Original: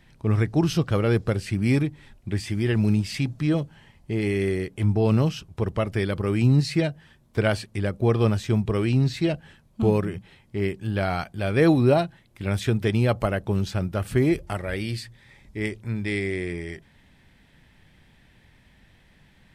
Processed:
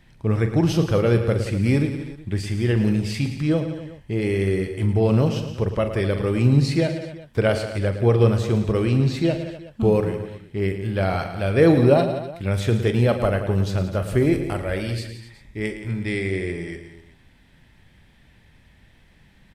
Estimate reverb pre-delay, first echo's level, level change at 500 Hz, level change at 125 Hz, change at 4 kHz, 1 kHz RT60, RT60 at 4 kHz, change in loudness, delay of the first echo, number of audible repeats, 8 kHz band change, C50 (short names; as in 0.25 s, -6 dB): none, -11.5 dB, +4.5 dB, +2.5 dB, +1.0 dB, none, none, +2.5 dB, 42 ms, 5, +1.0 dB, none